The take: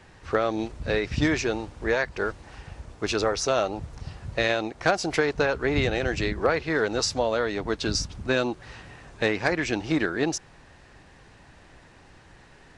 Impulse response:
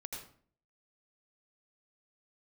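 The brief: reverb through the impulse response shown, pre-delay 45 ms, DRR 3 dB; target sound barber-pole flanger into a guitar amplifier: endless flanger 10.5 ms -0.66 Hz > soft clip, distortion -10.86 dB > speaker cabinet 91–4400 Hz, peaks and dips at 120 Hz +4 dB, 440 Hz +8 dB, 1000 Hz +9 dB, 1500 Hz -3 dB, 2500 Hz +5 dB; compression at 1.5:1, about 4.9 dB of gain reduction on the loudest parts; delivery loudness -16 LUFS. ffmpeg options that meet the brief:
-filter_complex "[0:a]acompressor=threshold=-32dB:ratio=1.5,asplit=2[a][b];[1:a]atrim=start_sample=2205,adelay=45[c];[b][c]afir=irnorm=-1:irlink=0,volume=-1dB[d];[a][d]amix=inputs=2:normalize=0,asplit=2[e][f];[f]adelay=10.5,afreqshift=-0.66[g];[e][g]amix=inputs=2:normalize=1,asoftclip=threshold=-29.5dB,highpass=91,equalizer=f=120:t=q:w=4:g=4,equalizer=f=440:t=q:w=4:g=8,equalizer=f=1k:t=q:w=4:g=9,equalizer=f=1.5k:t=q:w=4:g=-3,equalizer=f=2.5k:t=q:w=4:g=5,lowpass=f=4.4k:w=0.5412,lowpass=f=4.4k:w=1.3066,volume=16.5dB"

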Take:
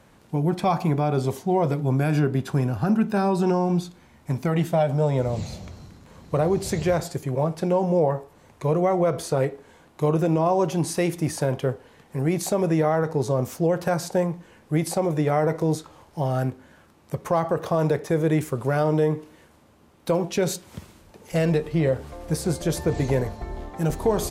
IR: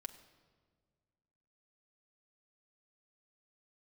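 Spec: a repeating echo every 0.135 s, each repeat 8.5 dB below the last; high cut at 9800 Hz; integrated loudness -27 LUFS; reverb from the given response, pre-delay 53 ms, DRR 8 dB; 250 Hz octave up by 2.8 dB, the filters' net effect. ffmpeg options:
-filter_complex "[0:a]lowpass=9.8k,equalizer=f=250:t=o:g=4.5,aecho=1:1:135|270|405|540:0.376|0.143|0.0543|0.0206,asplit=2[a][b];[1:a]atrim=start_sample=2205,adelay=53[c];[b][c]afir=irnorm=-1:irlink=0,volume=-4dB[d];[a][d]amix=inputs=2:normalize=0,volume=-5.5dB"

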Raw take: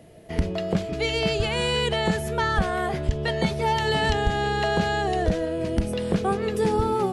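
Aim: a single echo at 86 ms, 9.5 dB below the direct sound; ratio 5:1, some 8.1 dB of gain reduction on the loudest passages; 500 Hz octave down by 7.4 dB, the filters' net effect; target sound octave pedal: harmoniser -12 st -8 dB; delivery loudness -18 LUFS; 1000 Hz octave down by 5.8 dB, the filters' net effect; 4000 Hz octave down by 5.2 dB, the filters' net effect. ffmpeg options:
-filter_complex "[0:a]equalizer=f=500:t=o:g=-8.5,equalizer=f=1k:t=o:g=-4,equalizer=f=4k:t=o:g=-7,acompressor=threshold=-26dB:ratio=5,aecho=1:1:86:0.335,asplit=2[a][b];[b]asetrate=22050,aresample=44100,atempo=2,volume=-8dB[c];[a][c]amix=inputs=2:normalize=0,volume=12.5dB"

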